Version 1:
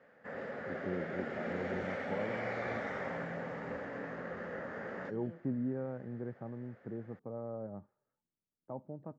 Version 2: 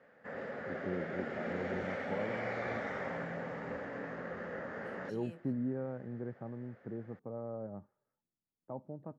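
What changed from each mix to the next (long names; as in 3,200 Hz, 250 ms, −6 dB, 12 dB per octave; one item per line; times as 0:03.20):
second voice: remove Savitzky-Golay smoothing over 41 samples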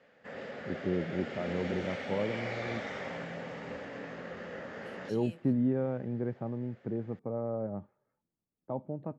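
first voice +7.5 dB
master: add high shelf with overshoot 2,200 Hz +7.5 dB, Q 1.5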